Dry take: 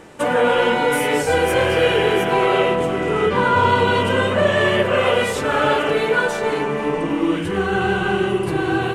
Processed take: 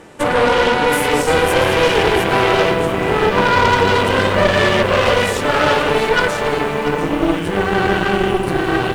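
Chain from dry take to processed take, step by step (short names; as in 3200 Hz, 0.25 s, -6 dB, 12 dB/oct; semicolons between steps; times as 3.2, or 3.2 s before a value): added harmonics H 6 -14 dB, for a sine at -4 dBFS; lo-fi delay 0.688 s, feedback 35%, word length 6-bit, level -12 dB; gain +1.5 dB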